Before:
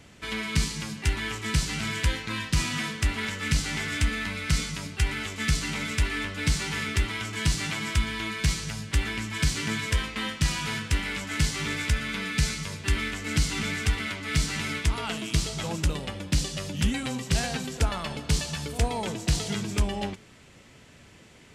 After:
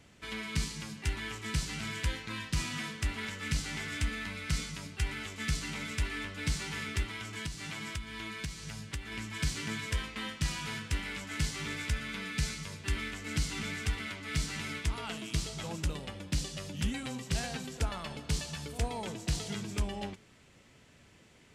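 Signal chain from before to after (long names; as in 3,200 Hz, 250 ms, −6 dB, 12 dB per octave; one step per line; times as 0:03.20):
0:07.03–0:09.12: downward compressor 6 to 1, threshold −28 dBFS, peak gain reduction 9.5 dB
level −7.5 dB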